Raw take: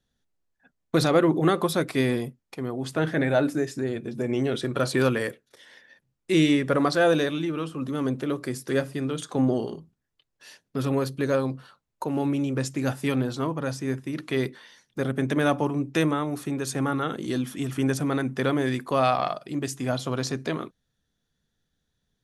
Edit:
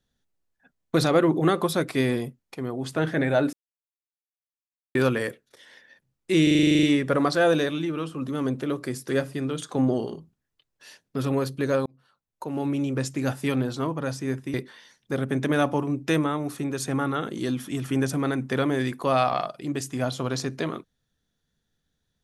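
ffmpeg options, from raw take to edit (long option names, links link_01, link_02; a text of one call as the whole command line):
ffmpeg -i in.wav -filter_complex "[0:a]asplit=15[link_01][link_02][link_03][link_04][link_05][link_06][link_07][link_08][link_09][link_10][link_11][link_12][link_13][link_14][link_15];[link_01]atrim=end=3.53,asetpts=PTS-STARTPTS,afade=type=out:start_time=3.526:duration=0.004:curve=hsin[link_16];[link_02]atrim=start=3.53:end=4.95,asetpts=PTS-STARTPTS,volume=0[link_17];[link_03]atrim=start=4.95:end=6.472,asetpts=PTS-STARTPTS,afade=type=in:duration=0.004:curve=hsin[link_18];[link_04]atrim=start=6.428:end=6.472[link_19];[link_05]atrim=start=6.428:end=6.472[link_20];[link_06]atrim=start=6.428:end=6.472[link_21];[link_07]atrim=start=6.428:end=6.472[link_22];[link_08]atrim=start=6.428:end=6.472[link_23];[link_09]atrim=start=6.428:end=6.472[link_24];[link_10]atrim=start=6.428:end=6.472[link_25];[link_11]atrim=start=6.428:end=6.472[link_26];[link_12]atrim=start=6.428:end=6.472[link_27];[link_13]atrim=start=6.428:end=11.46,asetpts=PTS-STARTPTS,afade=type=out:start_time=5.028:duration=0.004:curve=hsin[link_28];[link_14]atrim=start=11.46:end=14.142,asetpts=PTS-STARTPTS,afade=type=in:duration=0.96[link_29];[link_15]atrim=start=14.408[link_30];[link_16][link_17][link_18]concat=n=3:v=0:a=1[link_31];[link_31][link_19]acrossfade=duration=0.004:curve1=hsin:curve2=hsin[link_32];[link_32][link_20]acrossfade=duration=0.004:curve1=hsin:curve2=hsin[link_33];[link_33][link_21]acrossfade=duration=0.004:curve1=hsin:curve2=hsin[link_34];[link_34][link_22]acrossfade=duration=0.004:curve1=hsin:curve2=hsin[link_35];[link_35][link_23]acrossfade=duration=0.004:curve1=hsin:curve2=hsin[link_36];[link_36][link_24]acrossfade=duration=0.004:curve1=hsin:curve2=hsin[link_37];[link_37][link_25]acrossfade=duration=0.004:curve1=hsin:curve2=hsin[link_38];[link_38][link_26]acrossfade=duration=0.004:curve1=hsin:curve2=hsin[link_39];[link_39][link_27]acrossfade=duration=0.004:curve1=hsin:curve2=hsin[link_40];[link_28][link_29]concat=n=2:v=0:a=1[link_41];[link_40][link_41]acrossfade=duration=0.004:curve1=hsin:curve2=hsin[link_42];[link_42][link_30]acrossfade=duration=0.004:curve1=hsin:curve2=hsin" out.wav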